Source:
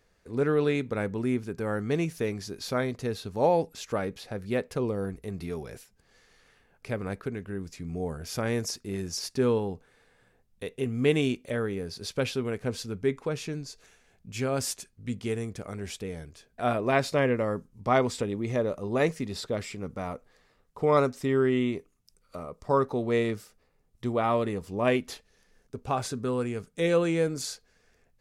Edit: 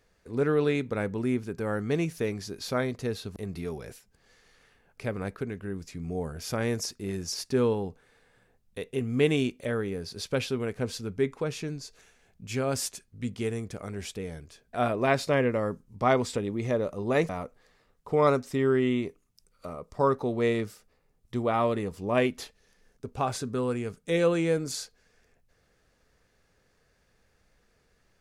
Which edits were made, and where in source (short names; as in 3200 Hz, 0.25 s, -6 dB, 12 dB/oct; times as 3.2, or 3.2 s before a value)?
3.36–5.21 cut
19.14–19.99 cut